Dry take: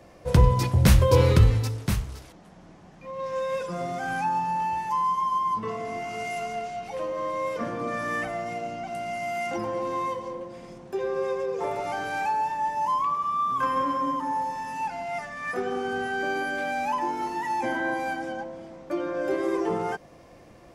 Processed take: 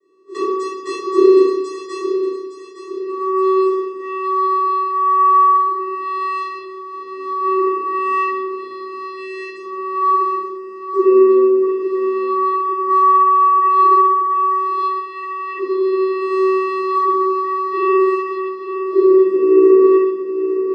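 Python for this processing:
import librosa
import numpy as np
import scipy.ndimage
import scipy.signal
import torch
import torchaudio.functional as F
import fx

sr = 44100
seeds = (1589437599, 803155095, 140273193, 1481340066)

p1 = fx.tremolo_random(x, sr, seeds[0], hz=3.5, depth_pct=55)
p2 = fx.noise_reduce_blind(p1, sr, reduce_db=12)
p3 = fx.rider(p2, sr, range_db=4, speed_s=0.5)
p4 = p2 + F.gain(torch.from_numpy(p3), 0.0).numpy()
p5 = fx.vocoder(p4, sr, bands=8, carrier='square', carrier_hz=379.0)
p6 = scipy.signal.sosfilt(scipy.signal.butter(2, 170.0, 'highpass', fs=sr, output='sos'), p5)
p7 = p6 + fx.echo_feedback(p6, sr, ms=863, feedback_pct=47, wet_db=-10, dry=0)
p8 = fx.room_shoebox(p7, sr, seeds[1], volume_m3=230.0, walls='mixed', distance_m=6.1)
y = F.gain(torch.from_numpy(p8), -4.5).numpy()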